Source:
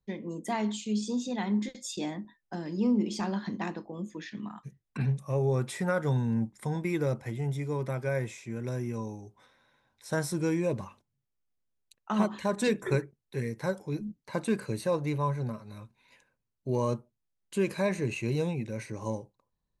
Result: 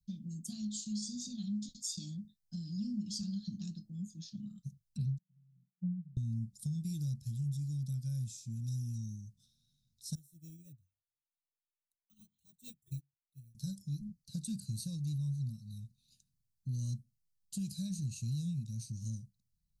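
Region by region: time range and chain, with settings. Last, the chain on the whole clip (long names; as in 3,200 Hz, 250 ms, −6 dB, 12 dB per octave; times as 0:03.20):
0:05.18–0:06.17: flat-topped band-pass 180 Hz, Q 7.8 + multiband upward and downward expander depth 70%
0:10.15–0:13.55: phaser with its sweep stopped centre 1,000 Hz, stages 8 + bad sample-rate conversion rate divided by 2×, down none, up hold + expander for the loud parts 2.5 to 1, over −41 dBFS
whole clip: elliptic band-stop filter 180–4,500 Hz, stop band 40 dB; dynamic equaliser 190 Hz, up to −3 dB, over −43 dBFS, Q 1.3; downward compressor 3 to 1, threshold −36 dBFS; level +2 dB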